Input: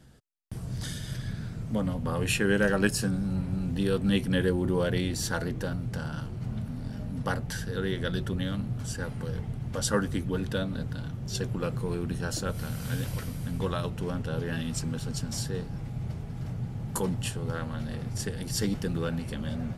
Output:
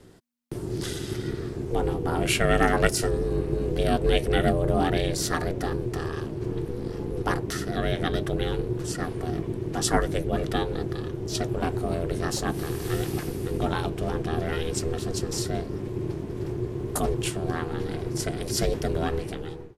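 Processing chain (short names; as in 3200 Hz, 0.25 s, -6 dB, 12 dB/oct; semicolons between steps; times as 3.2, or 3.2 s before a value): ending faded out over 0.61 s; ring modulator 240 Hz; gain +6.5 dB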